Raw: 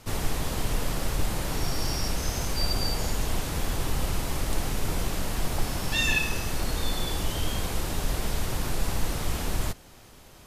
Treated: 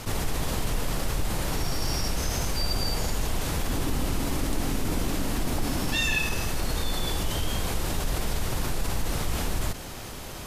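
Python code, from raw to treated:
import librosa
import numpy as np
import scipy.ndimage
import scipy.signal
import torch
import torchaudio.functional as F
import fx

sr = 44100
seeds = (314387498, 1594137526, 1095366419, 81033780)

y = fx.peak_eq(x, sr, hz=270.0, db=9.0, octaves=0.65, at=(3.69, 5.96))
y = fx.env_flatten(y, sr, amount_pct=50)
y = F.gain(torch.from_numpy(y), -3.5).numpy()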